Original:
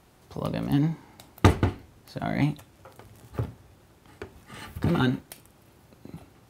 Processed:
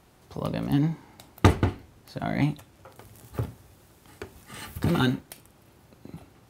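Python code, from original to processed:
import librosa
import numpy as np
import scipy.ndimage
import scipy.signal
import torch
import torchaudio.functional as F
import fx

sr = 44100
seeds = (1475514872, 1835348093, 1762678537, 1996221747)

y = fx.high_shelf(x, sr, hz=fx.line((2.97, 7400.0), (5.12, 4200.0)), db=8.5, at=(2.97, 5.12), fade=0.02)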